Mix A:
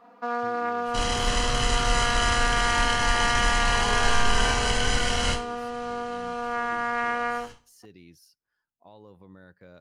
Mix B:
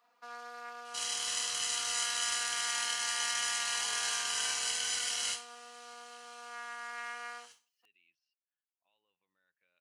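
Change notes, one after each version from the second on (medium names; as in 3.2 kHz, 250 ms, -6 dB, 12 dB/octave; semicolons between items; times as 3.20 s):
speech: add four-pole ladder low-pass 2.9 kHz, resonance 75%; master: add differentiator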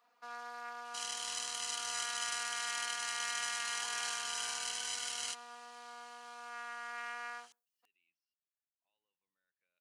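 speech -10.0 dB; reverb: off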